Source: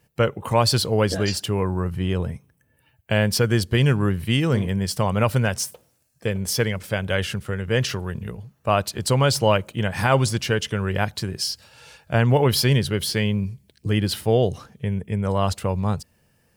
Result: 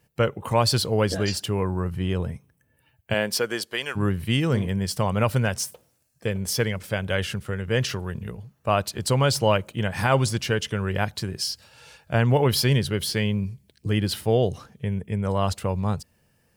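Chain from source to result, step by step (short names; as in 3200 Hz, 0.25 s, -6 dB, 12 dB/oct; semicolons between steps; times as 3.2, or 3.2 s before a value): 3.13–3.95 HPF 220 Hz -> 830 Hz 12 dB/oct; gain -2 dB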